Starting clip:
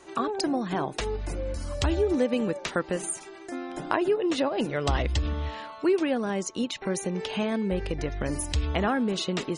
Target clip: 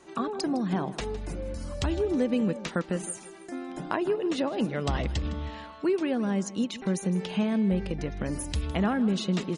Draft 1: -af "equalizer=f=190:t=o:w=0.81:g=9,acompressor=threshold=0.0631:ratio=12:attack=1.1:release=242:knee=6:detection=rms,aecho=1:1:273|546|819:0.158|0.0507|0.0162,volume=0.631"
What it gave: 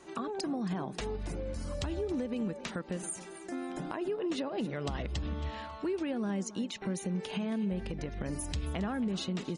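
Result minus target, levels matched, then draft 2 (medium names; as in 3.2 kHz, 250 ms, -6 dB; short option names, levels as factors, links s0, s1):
echo 114 ms late; compression: peak gain reduction +11.5 dB
-af "equalizer=f=190:t=o:w=0.81:g=9,aecho=1:1:159|318|477:0.158|0.0507|0.0162,volume=0.631"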